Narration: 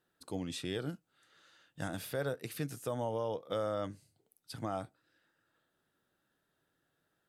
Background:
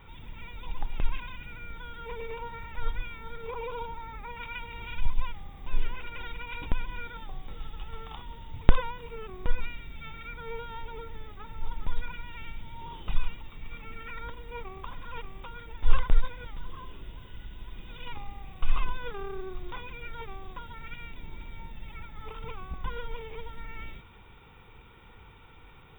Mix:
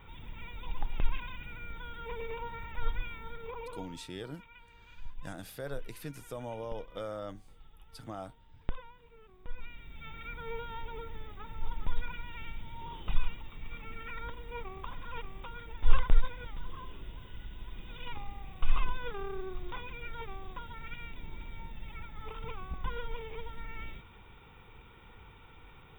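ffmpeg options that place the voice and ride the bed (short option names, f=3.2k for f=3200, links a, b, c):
-filter_complex "[0:a]adelay=3450,volume=-4.5dB[a];[1:a]volume=14dB,afade=t=out:st=3.14:d=0.94:silence=0.16788,afade=t=in:st=9.44:d=0.85:silence=0.16788[b];[a][b]amix=inputs=2:normalize=0"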